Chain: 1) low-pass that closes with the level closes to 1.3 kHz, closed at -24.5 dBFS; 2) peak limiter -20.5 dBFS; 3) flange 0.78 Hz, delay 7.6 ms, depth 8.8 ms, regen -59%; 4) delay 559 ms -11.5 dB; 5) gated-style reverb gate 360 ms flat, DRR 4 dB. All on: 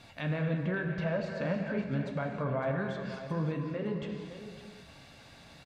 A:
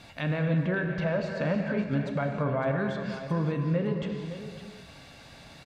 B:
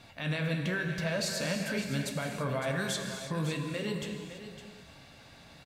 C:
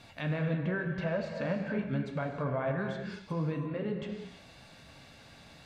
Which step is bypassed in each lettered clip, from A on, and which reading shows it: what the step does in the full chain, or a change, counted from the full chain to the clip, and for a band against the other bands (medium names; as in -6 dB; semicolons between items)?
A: 3, loudness change +4.5 LU; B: 1, 4 kHz band +13.0 dB; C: 4, momentary loudness spread change +1 LU